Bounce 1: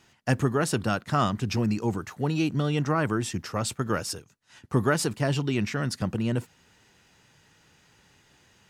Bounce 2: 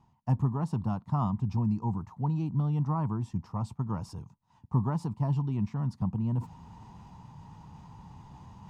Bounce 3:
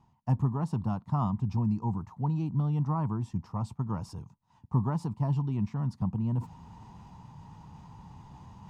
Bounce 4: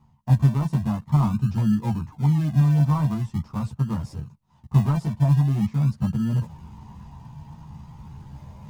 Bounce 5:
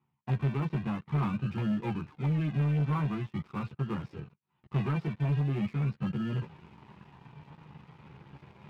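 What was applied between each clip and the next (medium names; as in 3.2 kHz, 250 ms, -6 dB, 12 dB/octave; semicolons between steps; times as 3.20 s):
FFT filter 190 Hz 0 dB, 370 Hz -15 dB, 560 Hz -17 dB, 960 Hz +2 dB, 1.5 kHz -25 dB, 5.2 kHz -23 dB, 11 kHz -28 dB; reverse; upward compressor, threshold -33 dBFS; reverse
no audible change
in parallel at -8 dB: decimation with a swept rate 41×, swing 60% 0.44 Hz; on the sum: chorus voices 6, 0.83 Hz, delay 14 ms, depth 1 ms; trim +5 dB
cabinet simulation 200–3400 Hz, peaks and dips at 230 Hz -7 dB, 380 Hz +7 dB, 640 Hz -9 dB, 950 Hz -6 dB, 1.4 kHz +3 dB, 2.4 kHz +7 dB; waveshaping leveller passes 2; trim -7.5 dB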